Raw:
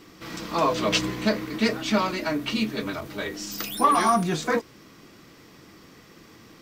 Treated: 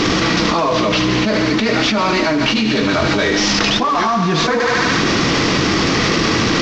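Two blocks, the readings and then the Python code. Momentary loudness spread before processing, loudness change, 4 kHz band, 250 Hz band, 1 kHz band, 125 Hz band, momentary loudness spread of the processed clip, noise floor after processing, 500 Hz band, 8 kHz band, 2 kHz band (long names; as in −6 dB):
11 LU, +10.0 dB, +15.0 dB, +12.0 dB, +8.0 dB, +14.5 dB, 1 LU, −17 dBFS, +10.5 dB, +11.5 dB, +15.0 dB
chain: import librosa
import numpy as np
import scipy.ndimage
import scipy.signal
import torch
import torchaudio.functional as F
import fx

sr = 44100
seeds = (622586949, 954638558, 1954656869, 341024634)

p1 = fx.cvsd(x, sr, bps=32000)
p2 = p1 + fx.echo_thinned(p1, sr, ms=74, feedback_pct=69, hz=600.0, wet_db=-9.5, dry=0)
y = fx.env_flatten(p2, sr, amount_pct=100)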